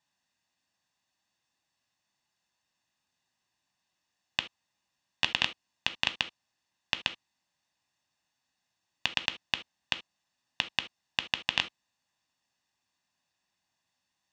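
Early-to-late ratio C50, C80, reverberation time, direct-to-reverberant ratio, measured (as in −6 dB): 16.5 dB, 29.5 dB, non-exponential decay, 10.0 dB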